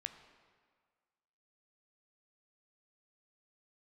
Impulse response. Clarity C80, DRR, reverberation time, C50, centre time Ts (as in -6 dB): 11.0 dB, 8.0 dB, 1.7 s, 10.0 dB, 18 ms